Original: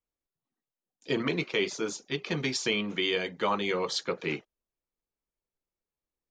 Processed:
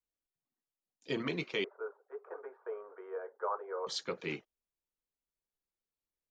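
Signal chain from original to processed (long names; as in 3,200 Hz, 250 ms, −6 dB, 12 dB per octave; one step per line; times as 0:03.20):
0:01.64–0:03.87: Chebyshev band-pass filter 420–1,500 Hz, order 4
level −6.5 dB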